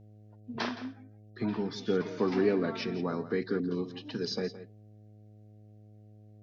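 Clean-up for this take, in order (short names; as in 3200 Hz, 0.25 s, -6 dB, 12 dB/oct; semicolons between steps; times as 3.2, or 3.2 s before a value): de-hum 105.8 Hz, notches 7; inverse comb 0.168 s -14 dB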